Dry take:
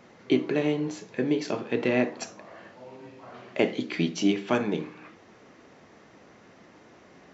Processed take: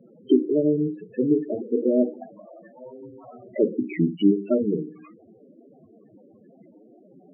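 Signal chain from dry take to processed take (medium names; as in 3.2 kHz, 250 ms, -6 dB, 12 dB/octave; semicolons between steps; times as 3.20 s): 1.15–3.18 s: treble shelf 2.5 kHz -7.5 dB; loudest bins only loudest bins 8; resampled via 8 kHz; trim +5.5 dB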